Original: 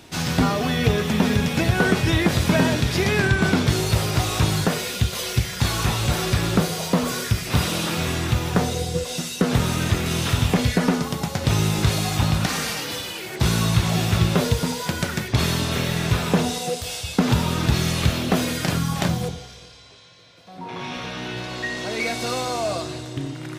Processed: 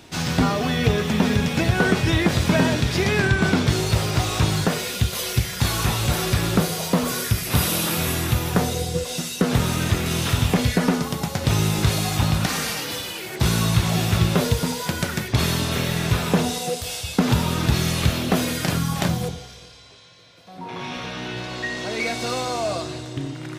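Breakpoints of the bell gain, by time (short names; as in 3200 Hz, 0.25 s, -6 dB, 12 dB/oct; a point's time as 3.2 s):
bell 12000 Hz 0.58 oct
4.54 s -3.5 dB
5.14 s +5.5 dB
7.04 s +5.5 dB
7.67 s +14.5 dB
8.2 s +14.5 dB
8.97 s +3.5 dB
20.66 s +3.5 dB
21.3 s -4 dB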